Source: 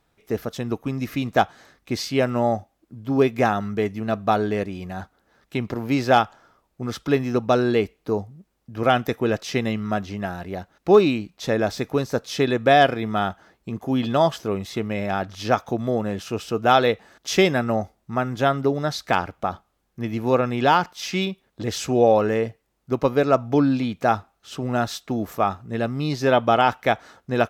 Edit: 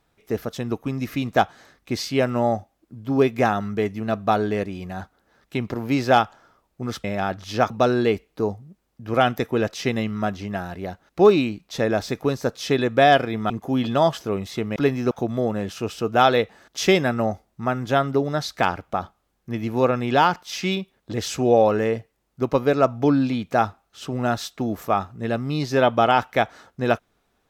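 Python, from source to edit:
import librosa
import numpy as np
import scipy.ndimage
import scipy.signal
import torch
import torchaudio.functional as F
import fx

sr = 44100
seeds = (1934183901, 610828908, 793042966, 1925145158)

y = fx.edit(x, sr, fx.swap(start_s=7.04, length_s=0.35, other_s=14.95, other_length_s=0.66),
    fx.cut(start_s=13.19, length_s=0.5), tone=tone)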